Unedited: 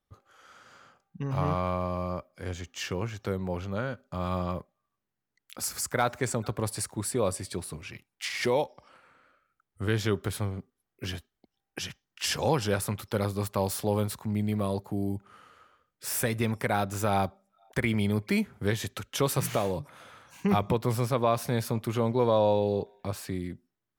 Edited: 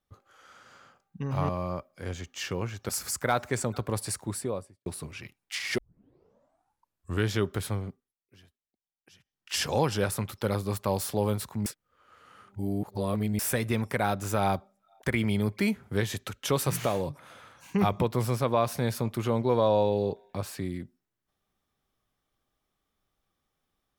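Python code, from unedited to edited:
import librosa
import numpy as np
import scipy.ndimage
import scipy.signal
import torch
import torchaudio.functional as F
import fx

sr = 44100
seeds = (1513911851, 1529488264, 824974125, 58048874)

y = fx.studio_fade_out(x, sr, start_s=6.93, length_s=0.63)
y = fx.edit(y, sr, fx.cut(start_s=1.49, length_s=0.4),
    fx.cut(start_s=3.29, length_s=2.3),
    fx.tape_start(start_s=8.48, length_s=1.5),
    fx.fade_down_up(start_s=10.56, length_s=1.68, db=-22.5, fade_s=0.29),
    fx.reverse_span(start_s=14.36, length_s=1.73), tone=tone)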